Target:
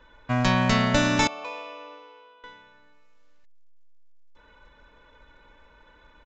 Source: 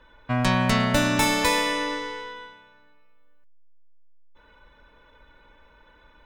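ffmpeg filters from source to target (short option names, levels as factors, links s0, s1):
-filter_complex "[0:a]acrusher=bits=6:mode=log:mix=0:aa=0.000001,asettb=1/sr,asplit=3[s0][s1][s2];[s0]atrim=end=1.274[s3];[s1]atrim=start=1.27:end=2.44,asetpts=PTS-STARTPTS,afade=t=in:d=0.004:c=qsin,afade=t=out:st=1.166:d=0.004:c=qsin,asplit=3[s4][s5][s6];[s4]bandpass=f=730:t=q:w=8,volume=1[s7];[s5]bandpass=f=1090:t=q:w=8,volume=0.501[s8];[s6]bandpass=f=2440:t=q:w=8,volume=0.355[s9];[s7][s8][s9]amix=inputs=3:normalize=0[s10];[s2]atrim=start=2.436[s11];[s3][s10]acrossfade=d=0.004:c1=hsin:c2=qsin[s12];[s12][s11]acrossfade=d=0.004:c1=qsin:c2=hsin,aresample=16000,aresample=44100"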